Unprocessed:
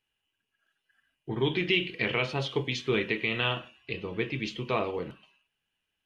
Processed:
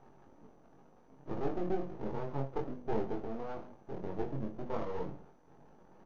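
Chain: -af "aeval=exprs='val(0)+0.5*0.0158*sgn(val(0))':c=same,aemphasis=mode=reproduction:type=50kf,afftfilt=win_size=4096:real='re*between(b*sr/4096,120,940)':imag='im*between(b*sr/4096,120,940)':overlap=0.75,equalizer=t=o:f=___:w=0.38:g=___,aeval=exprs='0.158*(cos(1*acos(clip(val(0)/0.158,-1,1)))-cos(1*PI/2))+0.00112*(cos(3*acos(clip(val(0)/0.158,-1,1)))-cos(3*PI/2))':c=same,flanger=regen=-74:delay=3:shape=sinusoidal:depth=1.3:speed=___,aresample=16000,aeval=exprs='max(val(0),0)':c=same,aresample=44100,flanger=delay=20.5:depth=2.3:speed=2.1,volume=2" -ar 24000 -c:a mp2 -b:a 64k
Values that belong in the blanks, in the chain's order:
640, -4.5, 0.47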